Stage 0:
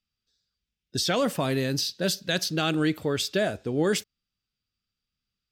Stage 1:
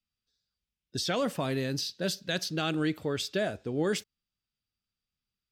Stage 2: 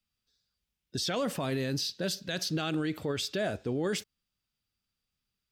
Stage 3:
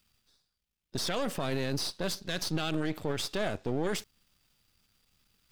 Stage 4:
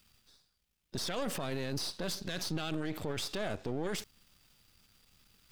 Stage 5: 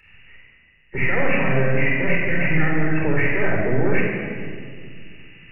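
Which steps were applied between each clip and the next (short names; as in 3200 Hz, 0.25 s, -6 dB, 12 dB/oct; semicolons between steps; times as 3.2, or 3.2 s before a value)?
high shelf 9000 Hz -5.5 dB; gain -4.5 dB
limiter -27 dBFS, peak gain reduction 8 dB; gain +4 dB
half-wave gain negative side -12 dB; reverse; upward compressor, threshold -57 dBFS; reverse; gain +2.5 dB
limiter -30.5 dBFS, peak gain reduction 10 dB; gain +5 dB
nonlinear frequency compression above 1500 Hz 4:1; shoebox room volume 3600 m³, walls mixed, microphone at 4.3 m; gain +7.5 dB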